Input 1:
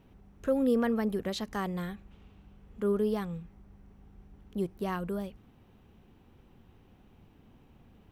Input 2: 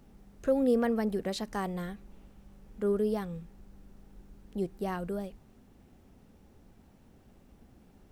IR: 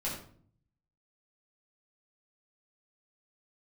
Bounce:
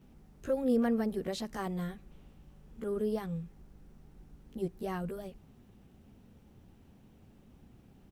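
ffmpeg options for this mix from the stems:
-filter_complex "[0:a]highpass=120,equalizer=f=990:t=o:w=3:g=-8,acompressor=threshold=-45dB:ratio=1.5,volume=-1.5dB[a];[1:a]volume=-1,adelay=15,volume=-4dB[b];[a][b]amix=inputs=2:normalize=0,equalizer=f=100:t=o:w=2.2:g=3.5"

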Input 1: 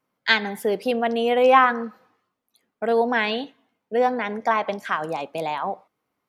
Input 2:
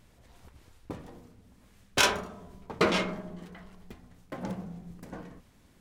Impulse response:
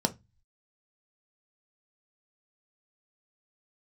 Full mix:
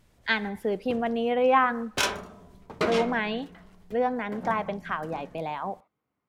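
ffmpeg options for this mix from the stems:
-filter_complex "[0:a]bass=f=250:g=7,treble=f=4k:g=-10,volume=-6dB[a];[1:a]volume=-2.5dB[b];[a][b]amix=inputs=2:normalize=0"

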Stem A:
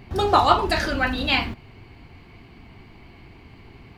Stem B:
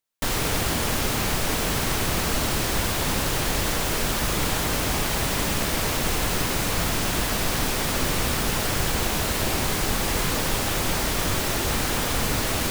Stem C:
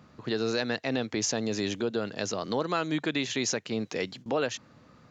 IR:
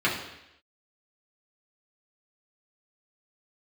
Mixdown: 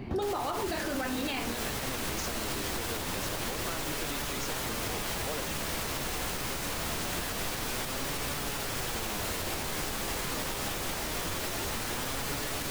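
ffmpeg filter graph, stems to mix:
-filter_complex "[0:a]acompressor=threshold=-27dB:ratio=1.5,equalizer=f=290:w=0.51:g=9.5,volume=-0.5dB[a];[1:a]flanger=delay=6.9:depth=8.1:regen=62:speed=0.24:shape=sinusoidal,volume=0.5dB[b];[2:a]adelay=950,volume=-6dB[c];[a][b][c]amix=inputs=3:normalize=0,acrossover=split=280[d][e];[d]acompressor=threshold=-34dB:ratio=2[f];[f][e]amix=inputs=2:normalize=0,alimiter=limit=-23.5dB:level=0:latency=1:release=179"

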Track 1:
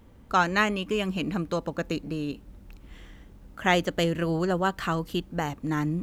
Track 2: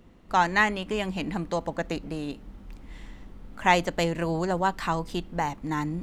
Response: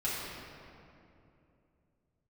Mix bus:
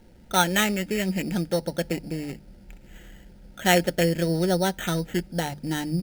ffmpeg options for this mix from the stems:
-filter_complex "[0:a]aecho=1:1:5.6:0.37,volume=1dB[a];[1:a]highpass=f=290:w=0.5412,highpass=f=290:w=1.3066,volume=-1,adelay=1.4,volume=-10.5dB[b];[a][b]amix=inputs=2:normalize=0,bandreject=f=50:t=h:w=6,bandreject=f=100:t=h:w=6,bandreject=f=150:t=h:w=6,acrusher=samples=9:mix=1:aa=0.000001,asuperstop=centerf=1100:order=4:qfactor=3.3"

